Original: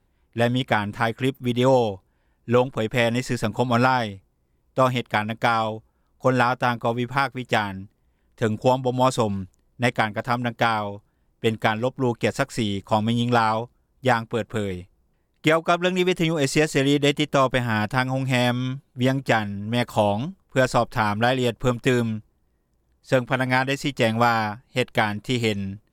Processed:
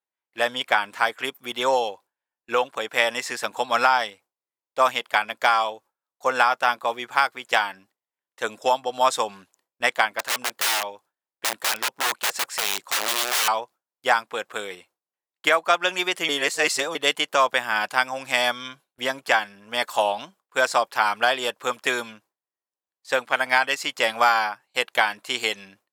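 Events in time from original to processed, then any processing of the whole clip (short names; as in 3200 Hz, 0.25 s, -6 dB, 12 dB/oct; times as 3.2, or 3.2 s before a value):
10.19–13.48 wrapped overs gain 20 dB
16.29–16.95 reverse
whole clip: HPF 760 Hz 12 dB/oct; gate with hold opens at -49 dBFS; gain +3.5 dB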